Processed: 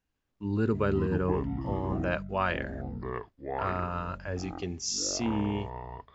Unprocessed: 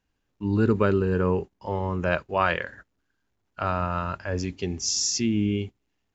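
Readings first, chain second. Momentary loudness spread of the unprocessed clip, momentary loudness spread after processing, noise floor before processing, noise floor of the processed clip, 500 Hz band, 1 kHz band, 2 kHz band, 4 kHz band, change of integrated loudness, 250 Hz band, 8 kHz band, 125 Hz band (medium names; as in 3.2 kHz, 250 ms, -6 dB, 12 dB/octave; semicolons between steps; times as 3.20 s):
9 LU, 10 LU, -76 dBFS, -80 dBFS, -5.0 dB, -4.5 dB, -5.5 dB, -6.0 dB, -5.5 dB, -4.5 dB, no reading, -4.5 dB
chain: ever faster or slower copies 144 ms, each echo -6 st, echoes 2, each echo -6 dB; trim -6 dB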